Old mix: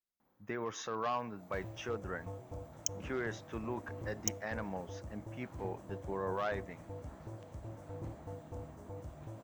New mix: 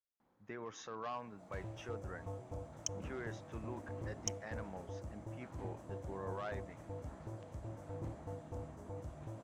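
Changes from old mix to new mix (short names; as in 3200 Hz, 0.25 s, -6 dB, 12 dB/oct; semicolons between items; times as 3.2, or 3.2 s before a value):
speech -7.5 dB; second sound: add air absorption 58 m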